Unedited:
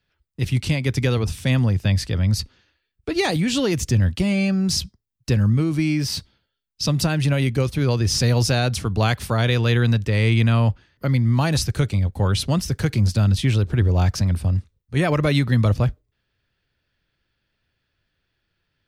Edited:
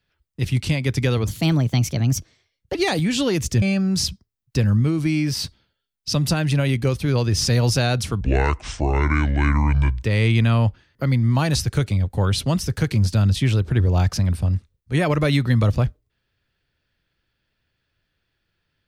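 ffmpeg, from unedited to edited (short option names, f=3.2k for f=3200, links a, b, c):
-filter_complex "[0:a]asplit=6[a][b][c][d][e][f];[a]atrim=end=1.274[g];[b]atrim=start=1.27:end=3.12,asetpts=PTS-STARTPTS,asetrate=55125,aresample=44100[h];[c]atrim=start=3.116:end=3.992[i];[d]atrim=start=4.348:end=8.944[j];[e]atrim=start=8.94:end=10.05,asetpts=PTS-STARTPTS,asetrate=26901,aresample=44100[k];[f]atrim=start=10.046[l];[g][h]acrossfade=d=0.004:c1=hsin:c2=hsin[m];[m][i]acrossfade=d=0.004:c1=hsin:c2=hsin[n];[n][j]acrossfade=d=0.004:c1=hsin:c2=hsin[o];[o][k]acrossfade=d=0.004:c1=hsin:c2=hsin[p];[p][l]acrossfade=d=0.004:c1=hsin:c2=hsin"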